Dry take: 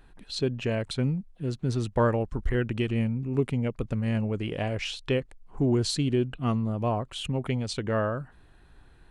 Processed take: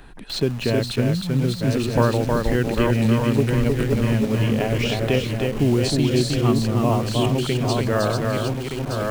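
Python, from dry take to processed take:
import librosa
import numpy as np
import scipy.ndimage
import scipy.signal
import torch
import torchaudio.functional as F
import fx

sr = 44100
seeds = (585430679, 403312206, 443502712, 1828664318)

p1 = fx.reverse_delay_fb(x, sr, ms=610, feedback_pct=54, wet_db=-5.0)
p2 = p1 + 10.0 ** (-4.5 / 20.0) * np.pad(p1, (int(314 * sr / 1000.0), 0))[:len(p1)]
p3 = fx.quant_dither(p2, sr, seeds[0], bits=6, dither='none')
p4 = p2 + (p3 * 10.0 ** (-5.0 / 20.0))
p5 = fx.band_squash(p4, sr, depth_pct=40)
y = p5 * 10.0 ** (1.0 / 20.0)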